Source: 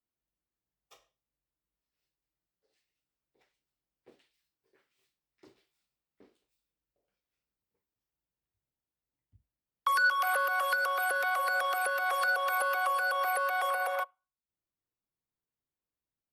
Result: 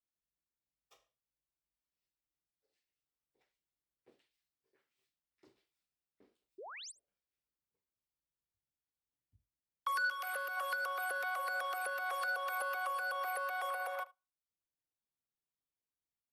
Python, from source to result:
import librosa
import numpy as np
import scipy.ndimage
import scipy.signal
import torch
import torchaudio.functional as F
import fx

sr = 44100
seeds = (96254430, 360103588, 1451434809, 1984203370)

y = fx.spec_paint(x, sr, seeds[0], shape='rise', start_s=6.58, length_s=0.34, low_hz=340.0, high_hz=9500.0, level_db=-40.0)
y = fx.peak_eq(y, sr, hz=910.0, db=-8.0, octaves=0.76, at=(10.05, 10.57))
y = y + 10.0 ** (-21.5 / 20.0) * np.pad(y, (int(75 * sr / 1000.0), 0))[:len(y)]
y = F.gain(torch.from_numpy(y), -8.0).numpy()